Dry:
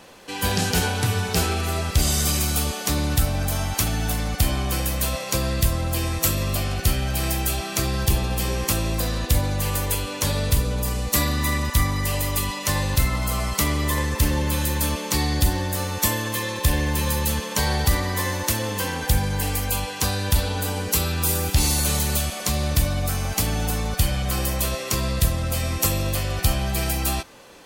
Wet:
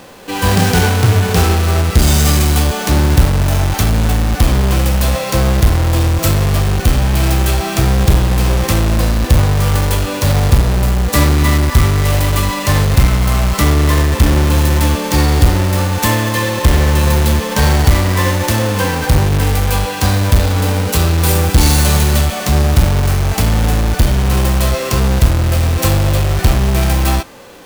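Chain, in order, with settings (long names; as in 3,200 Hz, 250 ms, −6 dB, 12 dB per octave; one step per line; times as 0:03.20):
each half-wave held at its own peak
harmonic and percussive parts rebalanced harmonic +9 dB
level −1.5 dB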